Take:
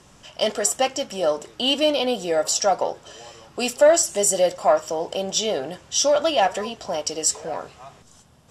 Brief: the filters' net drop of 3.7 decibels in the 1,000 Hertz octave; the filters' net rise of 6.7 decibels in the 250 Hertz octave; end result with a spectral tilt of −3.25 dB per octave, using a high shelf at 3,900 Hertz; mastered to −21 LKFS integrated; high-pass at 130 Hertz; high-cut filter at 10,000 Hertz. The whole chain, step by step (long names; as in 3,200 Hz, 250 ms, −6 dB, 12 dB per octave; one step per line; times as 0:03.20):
high-pass filter 130 Hz
low-pass filter 10,000 Hz
parametric band 250 Hz +9 dB
parametric band 1,000 Hz −6.5 dB
high-shelf EQ 3,900 Hz −7 dB
level +2 dB